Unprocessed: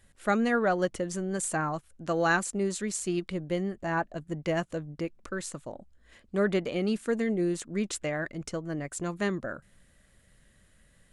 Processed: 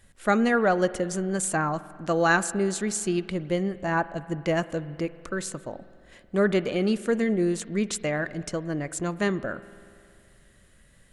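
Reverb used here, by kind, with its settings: spring tank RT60 2.4 s, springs 47 ms, chirp 35 ms, DRR 16 dB; trim +4 dB

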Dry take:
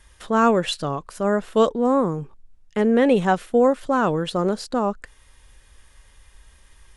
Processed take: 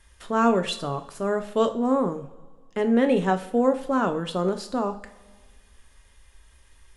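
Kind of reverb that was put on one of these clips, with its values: two-slope reverb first 0.41 s, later 1.8 s, from -18 dB, DRR 6.5 dB; trim -4.5 dB

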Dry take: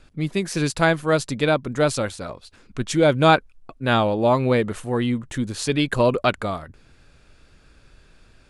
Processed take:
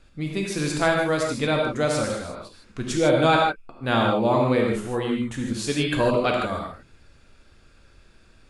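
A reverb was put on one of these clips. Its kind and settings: gated-style reverb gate 180 ms flat, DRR -0.5 dB; trim -4.5 dB

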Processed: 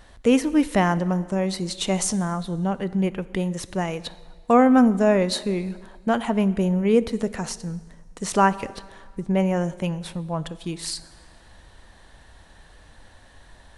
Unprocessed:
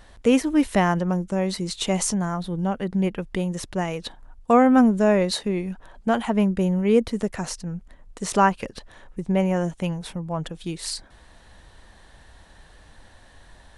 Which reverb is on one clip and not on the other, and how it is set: plate-style reverb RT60 1.6 s, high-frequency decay 0.85×, DRR 15.5 dB

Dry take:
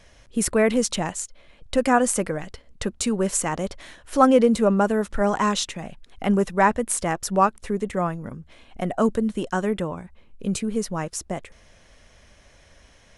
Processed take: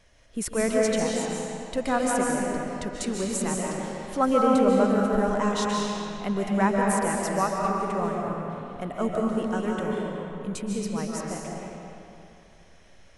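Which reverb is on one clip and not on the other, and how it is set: algorithmic reverb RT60 2.8 s, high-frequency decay 0.75×, pre-delay 105 ms, DRR -2.5 dB; trim -7.5 dB

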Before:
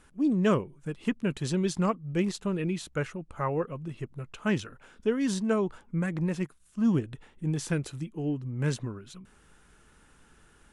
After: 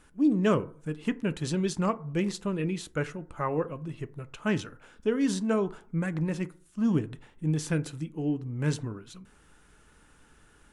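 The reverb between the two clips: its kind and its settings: FDN reverb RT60 0.5 s, low-frequency decay 0.9×, high-frequency decay 0.4×, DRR 12.5 dB

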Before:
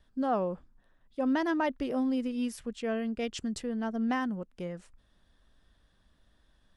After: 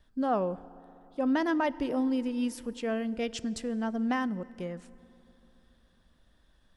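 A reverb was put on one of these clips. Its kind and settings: FDN reverb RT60 3.3 s, high-frequency decay 0.55×, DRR 17.5 dB; trim +1 dB

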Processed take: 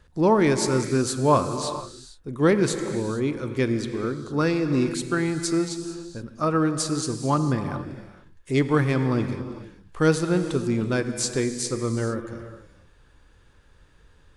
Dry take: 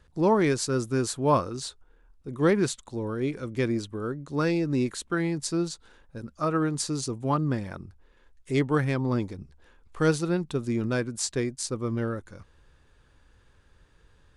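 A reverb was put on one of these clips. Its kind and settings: gated-style reverb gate 490 ms flat, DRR 8 dB; trim +3 dB

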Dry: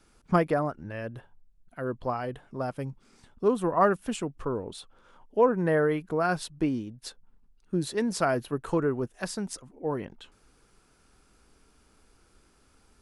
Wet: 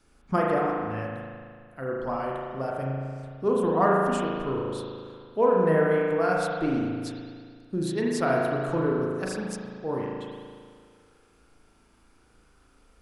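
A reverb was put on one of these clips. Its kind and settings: spring tank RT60 2 s, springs 37 ms, chirp 75 ms, DRR -3 dB; trim -2.5 dB

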